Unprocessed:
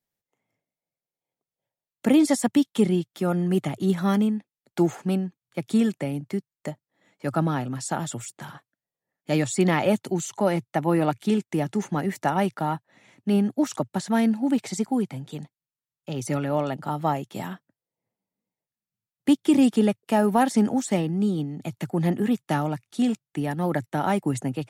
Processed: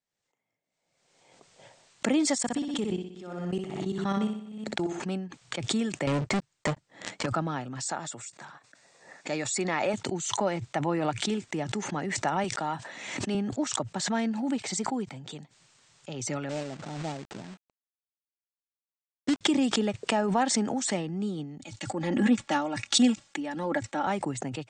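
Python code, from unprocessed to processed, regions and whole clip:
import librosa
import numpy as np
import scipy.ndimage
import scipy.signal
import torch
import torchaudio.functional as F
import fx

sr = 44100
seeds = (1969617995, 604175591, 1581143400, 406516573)

y = fx.chain(x, sr, fx.level_steps(step_db=21),
    fx.echo_feedback(ms=61, feedback_pct=51, wet_db=-5.5), at=(2.38, 5.0))
y = fx.chain(y, sr, fx.low_shelf(hz=170.0, db=6.5),
    fx.leveller(passes=5),
    fx.upward_expand(threshold_db=-30.0, expansion=1.5), at=(6.07, 7.26))
y = fx.chain(y, sr, fx.low_shelf(hz=180.0, db=-11.5),
    fx.notch(hz=3100.0, q=6.5), at=(7.84, 9.94))
y = fx.chain(y, sr, fx.highpass(hz=160.0, slope=12),
    fx.high_shelf(hz=4100.0, db=6.5),
    fx.sustainer(db_per_s=73.0), at=(12.44, 13.35))
y = fx.chain(y, sr, fx.moving_average(points=40),
    fx.quant_companded(bits=4), at=(16.49, 19.41))
y = fx.chain(y, sr, fx.comb(ms=3.6, depth=0.81),
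    fx.band_widen(depth_pct=100), at=(21.58, 24.07))
y = scipy.signal.sosfilt(scipy.signal.butter(16, 8600.0, 'lowpass', fs=sr, output='sos'), y)
y = fx.low_shelf(y, sr, hz=390.0, db=-6.5)
y = fx.pre_swell(y, sr, db_per_s=44.0)
y = y * 10.0 ** (-3.5 / 20.0)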